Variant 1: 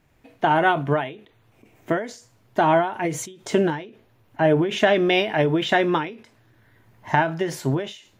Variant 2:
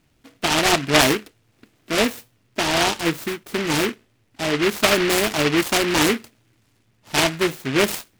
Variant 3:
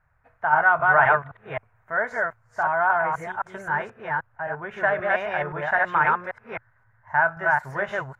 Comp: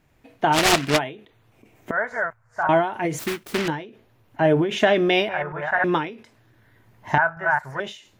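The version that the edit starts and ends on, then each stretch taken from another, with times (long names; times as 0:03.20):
1
0:00.55–0:00.96: punch in from 2, crossfade 0.06 s
0:01.91–0:02.69: punch in from 3
0:03.19–0:03.68: punch in from 2
0:05.29–0:05.84: punch in from 3
0:07.18–0:07.80: punch in from 3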